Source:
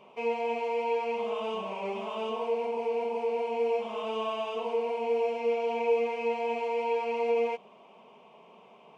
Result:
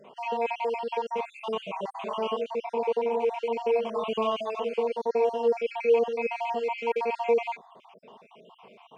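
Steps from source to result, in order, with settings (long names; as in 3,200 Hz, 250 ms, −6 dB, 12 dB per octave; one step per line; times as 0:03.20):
time-frequency cells dropped at random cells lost 49%
0:03.96–0:04.41: low-shelf EQ 170 Hz +10.5 dB
level +5 dB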